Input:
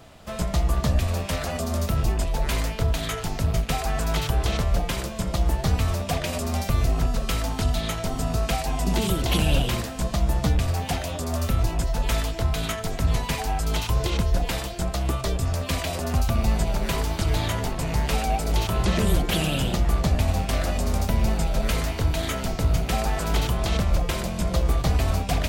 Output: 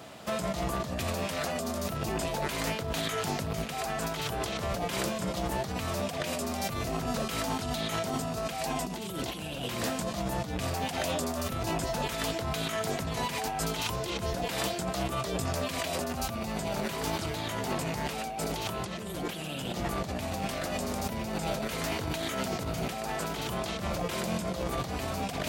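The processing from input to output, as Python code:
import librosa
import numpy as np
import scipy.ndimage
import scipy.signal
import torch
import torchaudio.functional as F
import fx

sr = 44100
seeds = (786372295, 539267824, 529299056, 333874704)

y = scipy.signal.sosfilt(scipy.signal.butter(2, 160.0, 'highpass', fs=sr, output='sos'), x)
y = fx.over_compress(y, sr, threshold_db=-33.0, ratio=-1.0)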